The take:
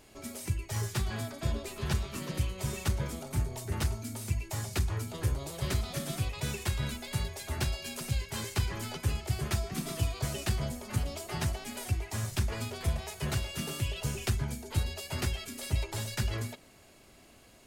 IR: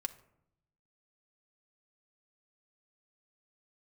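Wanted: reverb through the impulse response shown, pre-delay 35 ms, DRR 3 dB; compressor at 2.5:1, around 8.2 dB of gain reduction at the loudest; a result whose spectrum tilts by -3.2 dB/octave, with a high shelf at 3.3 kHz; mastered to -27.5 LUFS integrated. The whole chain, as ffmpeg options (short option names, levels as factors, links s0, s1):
-filter_complex "[0:a]highshelf=f=3300:g=8,acompressor=threshold=0.0158:ratio=2.5,asplit=2[s0][s1];[1:a]atrim=start_sample=2205,adelay=35[s2];[s1][s2]afir=irnorm=-1:irlink=0,volume=0.75[s3];[s0][s3]amix=inputs=2:normalize=0,volume=2.66"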